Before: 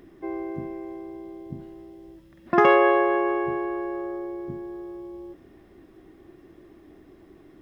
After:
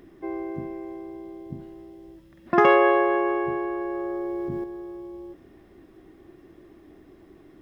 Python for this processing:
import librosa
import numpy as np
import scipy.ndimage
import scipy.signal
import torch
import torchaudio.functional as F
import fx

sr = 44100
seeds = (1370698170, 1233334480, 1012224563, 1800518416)

y = fx.env_flatten(x, sr, amount_pct=100, at=(3.81, 4.64))